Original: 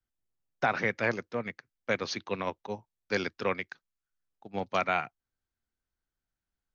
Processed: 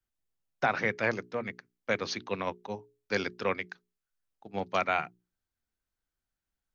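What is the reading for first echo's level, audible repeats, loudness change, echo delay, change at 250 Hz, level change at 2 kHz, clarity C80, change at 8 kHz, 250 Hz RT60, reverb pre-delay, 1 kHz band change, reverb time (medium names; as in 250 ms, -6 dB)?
no echo, no echo, 0.0 dB, no echo, -0.5 dB, 0.0 dB, no reverb, no reading, no reverb, no reverb, 0.0 dB, no reverb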